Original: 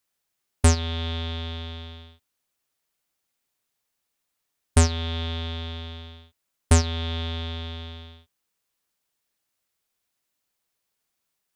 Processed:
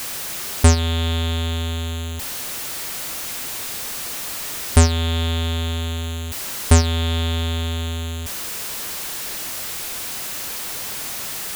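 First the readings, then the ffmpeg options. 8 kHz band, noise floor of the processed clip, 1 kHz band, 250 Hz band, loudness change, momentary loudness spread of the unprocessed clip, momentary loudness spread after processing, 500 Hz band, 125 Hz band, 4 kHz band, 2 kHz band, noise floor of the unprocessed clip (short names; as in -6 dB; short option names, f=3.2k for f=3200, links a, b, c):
+9.0 dB, -29 dBFS, +6.5 dB, +6.5 dB, +3.5 dB, 18 LU, 10 LU, +6.0 dB, +6.5 dB, +8.0 dB, +8.5 dB, -80 dBFS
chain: -af "aeval=exprs='val(0)+0.5*0.0473*sgn(val(0))':c=same,volume=4dB"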